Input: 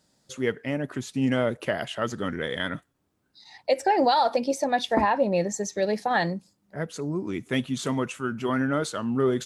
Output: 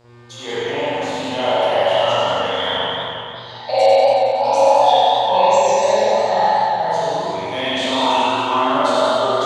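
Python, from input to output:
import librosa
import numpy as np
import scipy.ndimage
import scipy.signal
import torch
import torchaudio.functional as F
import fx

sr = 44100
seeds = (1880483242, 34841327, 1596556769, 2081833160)

y = fx.spec_trails(x, sr, decay_s=0.99)
y = fx.curve_eq(y, sr, hz=(240.0, 360.0, 550.0, 860.0, 1500.0, 3700.0, 6600.0, 11000.0), db=(0, -11, -4, 12, -9, 7, 1, -5))
y = fx.over_compress(y, sr, threshold_db=-20.0, ratio=-0.5)
y = fx.dmg_buzz(y, sr, base_hz=120.0, harmonics=32, level_db=-39.0, tilt_db=-8, odd_only=False)
y = fx.low_shelf_res(y, sr, hz=320.0, db=-10.5, q=1.5)
y = y + 10.0 ** (-3.0 / 20.0) * np.pad(y, (int(95 * sr / 1000.0), 0))[:len(y)]
y = fx.rev_spring(y, sr, rt60_s=1.6, pass_ms=(42,), chirp_ms=35, drr_db=-9.5)
y = fx.echo_warbled(y, sr, ms=184, feedback_pct=56, rate_hz=2.8, cents=107, wet_db=-6.0)
y = y * librosa.db_to_amplitude(-7.5)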